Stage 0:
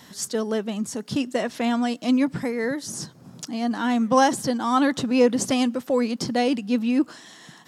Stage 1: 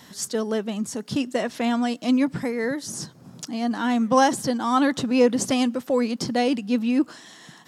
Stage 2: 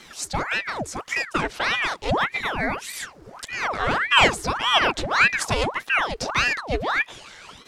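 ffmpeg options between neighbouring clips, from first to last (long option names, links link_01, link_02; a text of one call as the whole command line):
ffmpeg -i in.wav -af anull out.wav
ffmpeg -i in.wav -af "equalizer=frequency=125:width_type=o:width=1:gain=12,equalizer=frequency=500:width_type=o:width=1:gain=4,equalizer=frequency=1000:width_type=o:width=1:gain=7,equalizer=frequency=2000:width_type=o:width=1:gain=10,equalizer=frequency=4000:width_type=o:width=1:gain=5,equalizer=frequency=8000:width_type=o:width=1:gain=4,aeval=exprs='val(0)*sin(2*PI*1200*n/s+1200*0.85/1.7*sin(2*PI*1.7*n/s))':channel_layout=same,volume=-3.5dB" out.wav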